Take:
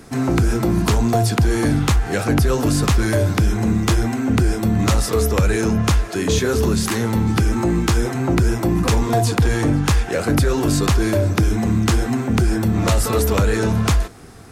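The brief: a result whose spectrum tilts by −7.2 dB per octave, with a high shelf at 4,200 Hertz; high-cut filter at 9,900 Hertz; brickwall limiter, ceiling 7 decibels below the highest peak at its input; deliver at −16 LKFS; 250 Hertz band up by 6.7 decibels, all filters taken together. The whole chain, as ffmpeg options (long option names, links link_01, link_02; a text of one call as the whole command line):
ffmpeg -i in.wav -af "lowpass=9900,equalizer=frequency=250:width_type=o:gain=8.5,highshelf=frequency=4200:gain=-7,volume=1.5dB,alimiter=limit=-8dB:level=0:latency=1" out.wav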